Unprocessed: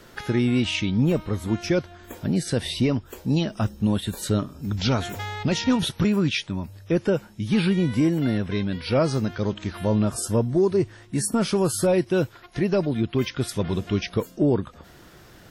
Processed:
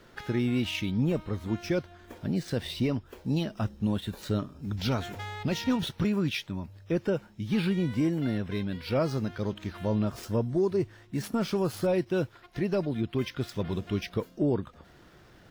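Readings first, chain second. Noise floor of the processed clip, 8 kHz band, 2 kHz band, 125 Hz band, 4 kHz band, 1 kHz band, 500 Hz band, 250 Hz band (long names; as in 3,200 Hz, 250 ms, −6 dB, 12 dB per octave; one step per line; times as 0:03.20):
−56 dBFS, −14.0 dB, −6.5 dB, −6.0 dB, −7.0 dB, −6.0 dB, −6.0 dB, −6.0 dB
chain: running median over 5 samples
level −6 dB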